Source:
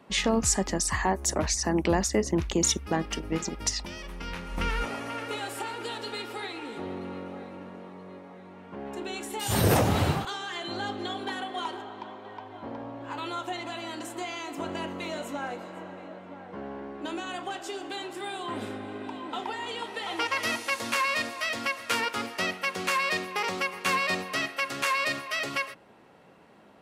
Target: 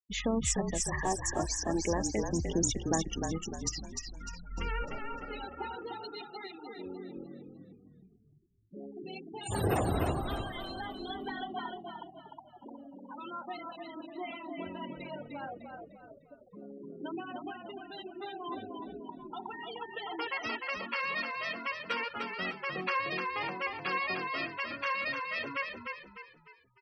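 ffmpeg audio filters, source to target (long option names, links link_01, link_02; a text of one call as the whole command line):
ffmpeg -i in.wav -filter_complex "[0:a]afftfilt=real='re*gte(hypot(re,im),0.0501)':imag='im*gte(hypot(re,im),0.0501)':win_size=1024:overlap=0.75,aphaser=in_gain=1:out_gain=1:delay=2.9:decay=0.34:speed=0.35:type=sinusoidal,asplit=6[link_01][link_02][link_03][link_04][link_05][link_06];[link_02]adelay=301,afreqshift=-39,volume=-5dB[link_07];[link_03]adelay=602,afreqshift=-78,volume=-13.2dB[link_08];[link_04]adelay=903,afreqshift=-117,volume=-21.4dB[link_09];[link_05]adelay=1204,afreqshift=-156,volume=-29.5dB[link_10];[link_06]adelay=1505,afreqshift=-195,volume=-37.7dB[link_11];[link_01][link_07][link_08][link_09][link_10][link_11]amix=inputs=6:normalize=0,volume=-7dB" out.wav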